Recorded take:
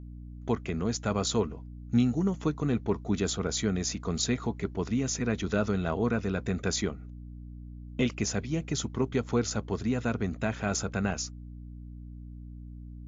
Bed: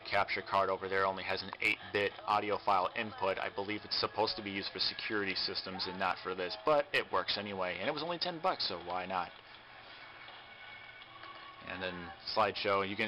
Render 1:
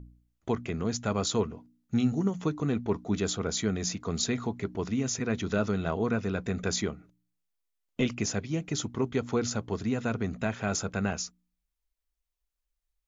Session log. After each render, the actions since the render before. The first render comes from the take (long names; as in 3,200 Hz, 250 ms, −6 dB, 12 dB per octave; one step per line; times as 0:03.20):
hum removal 60 Hz, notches 5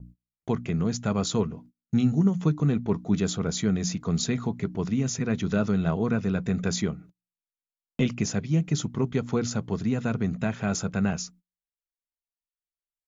noise gate −52 dBFS, range −26 dB
parametric band 160 Hz +10.5 dB 0.75 octaves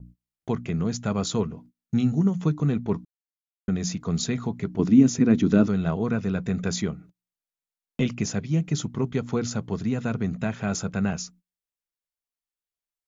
0:03.05–0:03.68: silence
0:04.79–0:05.68: parametric band 280 Hz +14 dB 0.9 octaves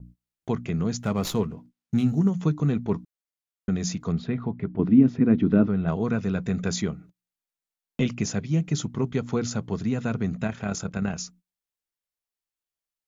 0:00.99–0:02.29: windowed peak hold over 3 samples
0:04.12–0:05.88: high-frequency loss of the air 440 metres
0:10.47–0:11.18: amplitude modulation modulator 36 Hz, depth 35%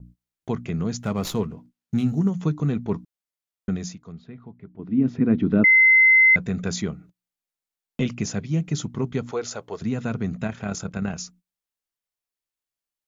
0:03.71–0:05.13: duck −13.5 dB, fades 0.28 s
0:05.64–0:06.36: beep over 2,060 Hz −11 dBFS
0:09.31–0:09.82: low shelf with overshoot 320 Hz −13 dB, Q 1.5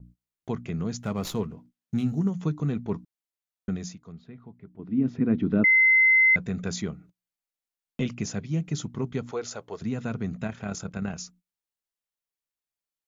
level −4 dB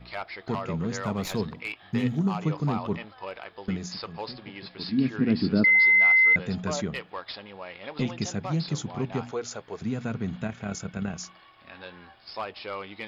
mix in bed −4 dB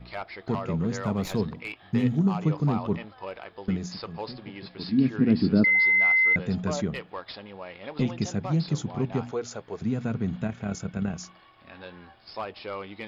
tilt shelving filter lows +3 dB, about 740 Hz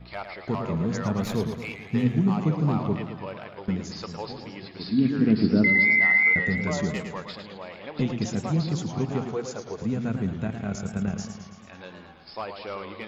feedback echo with a swinging delay time 110 ms, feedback 62%, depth 135 cents, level −8 dB